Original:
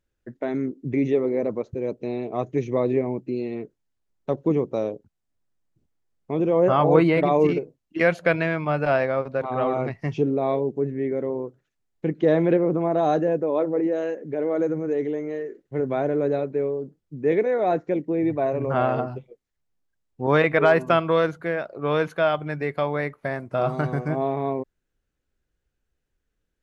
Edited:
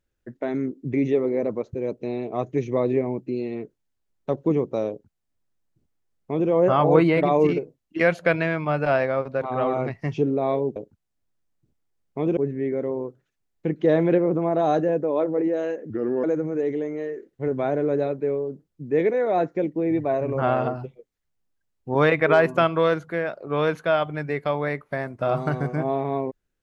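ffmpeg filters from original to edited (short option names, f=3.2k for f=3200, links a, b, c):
-filter_complex "[0:a]asplit=5[a][b][c][d][e];[a]atrim=end=10.762[f];[b]atrim=start=4.888:end=6.502[g];[c]atrim=start=10.758:end=14.294[h];[d]atrim=start=14.29:end=14.56,asetpts=PTS-STARTPTS,asetrate=35280,aresample=44100[i];[e]atrim=start=14.556[j];[f][g]acrossfade=d=0.004:c1=hsin:c2=hsin[k];[k][h]acrossfade=d=0.004:c1=hsin:c2=hsin[l];[l][i]acrossfade=d=0.004:c1=hsin:c2=hsin[m];[m][j]acrossfade=d=0.004:c1=hsin:c2=hsin"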